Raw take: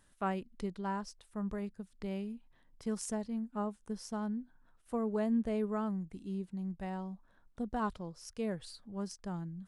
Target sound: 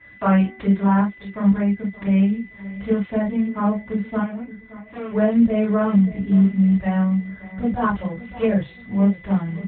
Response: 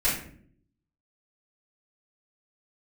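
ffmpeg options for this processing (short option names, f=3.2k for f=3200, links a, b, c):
-filter_complex "[0:a]bandreject=f=380.3:t=h:w=4,bandreject=f=760.6:t=h:w=4,bandreject=f=1.1409k:t=h:w=4,bandreject=f=1.5212k:t=h:w=4,bandreject=f=1.9015k:t=h:w=4,bandreject=f=2.2818k:t=h:w=4,bandreject=f=2.6621k:t=h:w=4,bandreject=f=3.0424k:t=h:w=4,bandreject=f=3.4227k:t=h:w=4,asubboost=boost=4:cutoff=110,asplit=2[a][b];[b]acompressor=threshold=-47dB:ratio=12,volume=0dB[c];[a][c]amix=inputs=2:normalize=0,aeval=exprs='val(0)+0.000794*sin(2*PI*2000*n/s)':c=same,acrusher=bits=6:mode=log:mix=0:aa=0.000001,asettb=1/sr,asplit=3[d][e][f];[d]atrim=end=4.194[g];[e]atrim=start=4.19:end=5.11,asetpts=PTS-STARTPTS,afade=t=in:d=0.004:c=qsin,afade=t=out:st=0.916:d=0.004:c=qsin,aeval=exprs='(tanh(178*val(0)+0.75)-tanh(0.75))/178':c=same[h];[f]atrim=start=5.106[i];[g][h]acrossfade=d=0.004:c1=hsin:c2=qsin[j];[j][i]acrossfade=d=0.004:c1=qsin:c2=hsin,asplit=2[k][l];[l]adelay=571,lowpass=f=2.9k:p=1,volume=-17.5dB,asplit=2[m][n];[n]adelay=571,lowpass=f=2.9k:p=1,volume=0.41,asplit=2[o][p];[p]adelay=571,lowpass=f=2.9k:p=1,volume=0.41[q];[k][m][o][q]amix=inputs=4:normalize=0[r];[1:a]atrim=start_sample=2205,atrim=end_sample=3528[s];[r][s]afir=irnorm=-1:irlink=0,alimiter=level_in=11.5dB:limit=-1dB:release=50:level=0:latency=1,volume=-6.5dB" -ar 8000 -c:a libopencore_amrnb -b:a 12200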